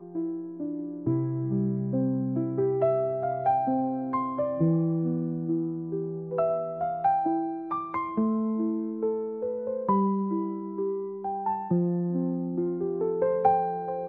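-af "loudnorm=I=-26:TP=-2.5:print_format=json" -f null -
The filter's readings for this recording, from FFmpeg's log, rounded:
"input_i" : "-28.1",
"input_tp" : "-10.0",
"input_lra" : "1.8",
"input_thresh" : "-38.1",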